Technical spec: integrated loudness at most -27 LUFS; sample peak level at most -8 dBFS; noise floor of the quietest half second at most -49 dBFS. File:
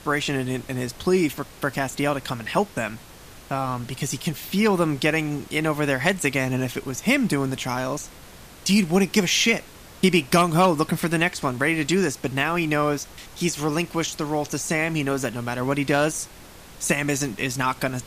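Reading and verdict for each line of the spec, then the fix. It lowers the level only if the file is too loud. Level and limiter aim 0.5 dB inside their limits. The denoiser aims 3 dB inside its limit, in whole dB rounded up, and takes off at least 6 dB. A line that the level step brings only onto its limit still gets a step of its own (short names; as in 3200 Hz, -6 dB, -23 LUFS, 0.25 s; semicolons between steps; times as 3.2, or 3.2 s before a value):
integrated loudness -23.5 LUFS: fail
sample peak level -5.5 dBFS: fail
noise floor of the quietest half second -44 dBFS: fail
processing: denoiser 6 dB, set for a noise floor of -44 dBFS; gain -4 dB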